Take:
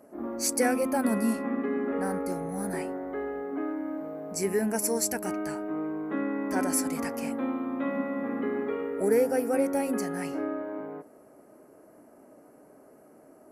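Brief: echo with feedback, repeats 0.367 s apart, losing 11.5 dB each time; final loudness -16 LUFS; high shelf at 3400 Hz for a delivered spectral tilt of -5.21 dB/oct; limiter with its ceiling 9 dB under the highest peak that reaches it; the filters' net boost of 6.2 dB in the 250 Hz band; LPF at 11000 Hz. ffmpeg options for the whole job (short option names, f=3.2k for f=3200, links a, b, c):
-af "lowpass=11k,equalizer=f=250:t=o:g=7,highshelf=f=3.4k:g=-6,alimiter=limit=-18.5dB:level=0:latency=1,aecho=1:1:367|734|1101:0.266|0.0718|0.0194,volume=11.5dB"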